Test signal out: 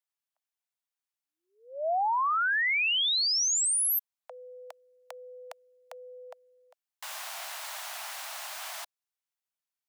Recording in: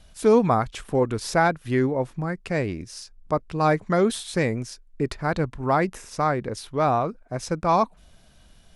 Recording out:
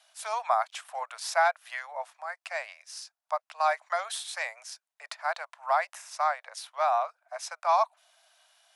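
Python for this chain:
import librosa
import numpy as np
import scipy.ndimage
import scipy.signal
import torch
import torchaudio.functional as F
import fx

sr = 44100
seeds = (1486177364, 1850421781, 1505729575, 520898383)

y = scipy.signal.sosfilt(scipy.signal.butter(12, 630.0, 'highpass', fs=sr, output='sos'), x)
y = y * 10.0 ** (-2.5 / 20.0)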